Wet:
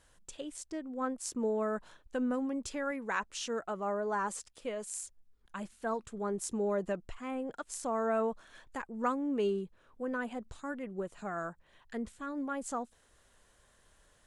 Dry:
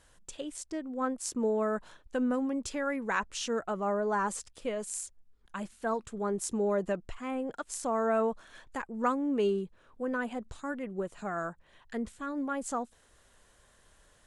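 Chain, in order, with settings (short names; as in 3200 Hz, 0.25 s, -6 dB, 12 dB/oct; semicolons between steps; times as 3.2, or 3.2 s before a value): 2.91–5.04 low shelf 160 Hz -7 dB; gain -3 dB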